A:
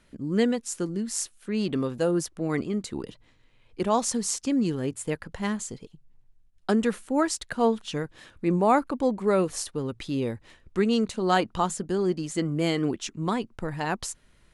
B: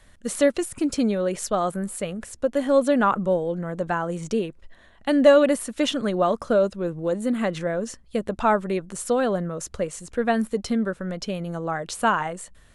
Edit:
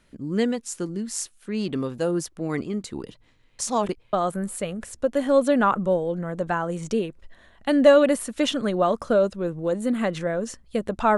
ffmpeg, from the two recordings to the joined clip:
-filter_complex "[0:a]apad=whole_dur=11.17,atrim=end=11.17,asplit=2[a][b];[a]atrim=end=3.592[c];[b]atrim=start=3.588:end=4.132,asetpts=PTS-STARTPTS,areverse[d];[1:a]atrim=start=1.528:end=8.57[e];[c][d]acrossfade=d=0.004:c1=hsin:c2=hsin[f];[f][e]acrossfade=d=0.004:c1=hsin:c2=hsin"

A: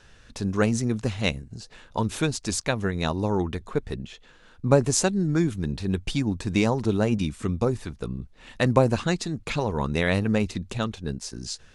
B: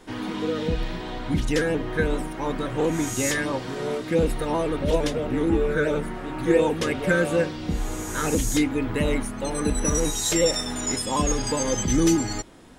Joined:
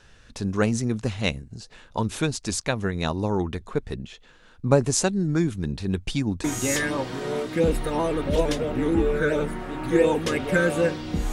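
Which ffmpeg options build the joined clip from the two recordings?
-filter_complex "[0:a]apad=whole_dur=11.32,atrim=end=11.32,atrim=end=6.442[a];[1:a]atrim=start=2.988:end=7.87[b];[a][b]acrossfade=d=0.004:c1=hsin:c2=hsin"

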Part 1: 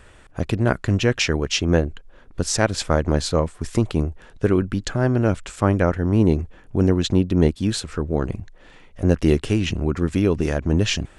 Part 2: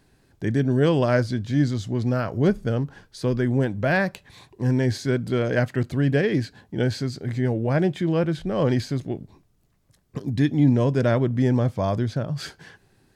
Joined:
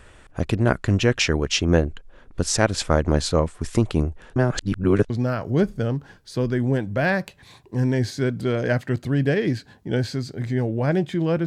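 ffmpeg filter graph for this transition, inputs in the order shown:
-filter_complex "[0:a]apad=whole_dur=11.46,atrim=end=11.46,asplit=2[a][b];[a]atrim=end=4.362[c];[b]atrim=start=4.358:end=5.102,asetpts=PTS-STARTPTS,areverse[d];[1:a]atrim=start=1.968:end=8.33[e];[c][d]acrossfade=d=0.004:c1=hsin:c2=hsin[f];[f][e]acrossfade=d=0.004:c1=hsin:c2=hsin"

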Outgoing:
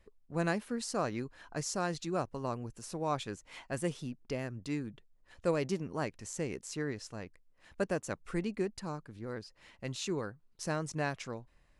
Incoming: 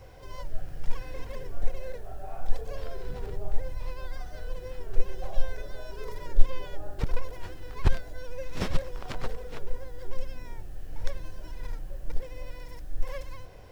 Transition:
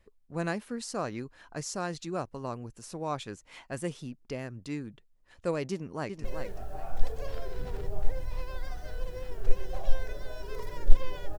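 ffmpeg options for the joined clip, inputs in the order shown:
-filter_complex "[0:a]apad=whole_dur=11.38,atrim=end=11.38,atrim=end=6.242[a];[1:a]atrim=start=1.728:end=6.87[b];[a][b]acrossfade=d=0.004:c1=hsin:c2=hsin,asplit=2[c][d];[d]afade=t=in:st=5.71:d=0.01,afade=t=out:st=6.24:d=0.01,aecho=0:1:380|760|1140:0.473151|0.118288|0.029572[e];[c][e]amix=inputs=2:normalize=0"

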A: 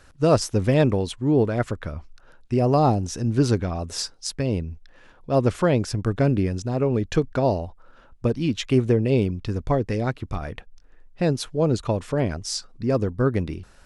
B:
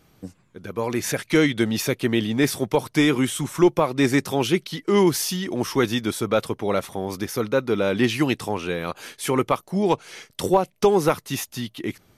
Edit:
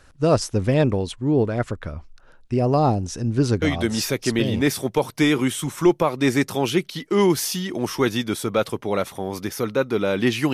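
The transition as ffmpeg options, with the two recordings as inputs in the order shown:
-filter_complex "[0:a]apad=whole_dur=10.53,atrim=end=10.53,atrim=end=4.62,asetpts=PTS-STARTPTS[a];[1:a]atrim=start=1.39:end=8.3,asetpts=PTS-STARTPTS[b];[a][b]acrossfade=d=1:c1=log:c2=log"

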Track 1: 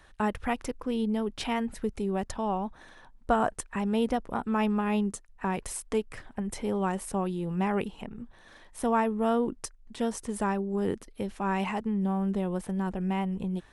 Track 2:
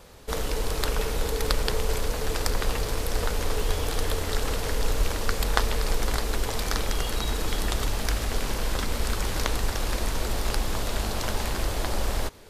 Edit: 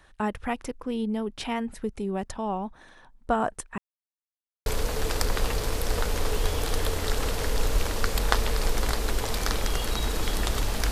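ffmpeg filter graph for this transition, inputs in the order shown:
-filter_complex "[0:a]apad=whole_dur=10.91,atrim=end=10.91,asplit=2[a][b];[a]atrim=end=3.78,asetpts=PTS-STARTPTS,afade=t=out:st=3.776:d=0.004:c=hsin[c];[b]atrim=start=3.78:end=4.66,asetpts=PTS-STARTPTS,volume=0[d];[1:a]atrim=start=1.91:end=8.16,asetpts=PTS-STARTPTS,afade=t=in:d=0.004:c=hsin[e];[c][d][e]concat=n=3:v=0:a=1"

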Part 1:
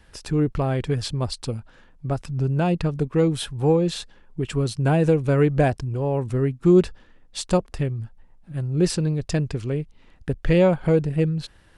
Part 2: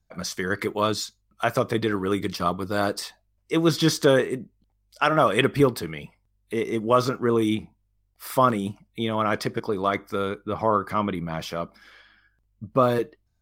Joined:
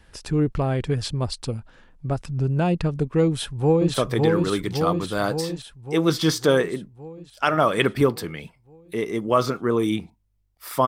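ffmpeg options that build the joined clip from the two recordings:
-filter_complex "[0:a]apad=whole_dur=10.87,atrim=end=10.87,atrim=end=3.942[a];[1:a]atrim=start=1.528:end=8.46[b];[a][b]acrossfade=d=0.004:c1=hsin:c2=hsin,asplit=2[c][d];[d]afade=t=in:st=3.25:d=0.01,afade=t=out:st=3.94:d=0.01,aecho=0:1:560|1120|1680|2240|2800|3360|3920|4480|5040|5600|6160:0.794328|0.516313|0.335604|0.218142|0.141793|0.0921652|0.0599074|0.0389398|0.0253109|0.0164521|0.0106938[e];[c][e]amix=inputs=2:normalize=0"

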